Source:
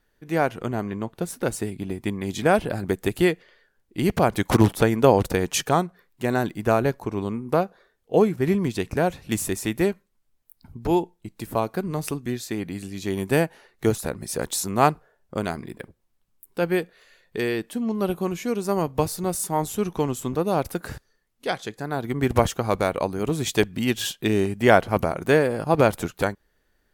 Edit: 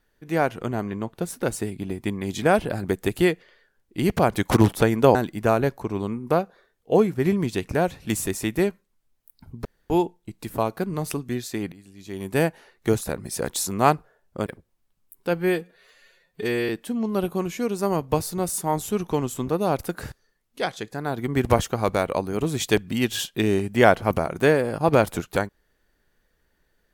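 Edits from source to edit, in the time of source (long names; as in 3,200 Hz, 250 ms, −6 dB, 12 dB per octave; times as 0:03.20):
0:05.15–0:06.37: remove
0:10.87: splice in room tone 0.25 s
0:12.69–0:13.42: fade in quadratic, from −16 dB
0:15.43–0:15.77: remove
0:16.65–0:17.55: time-stretch 1.5×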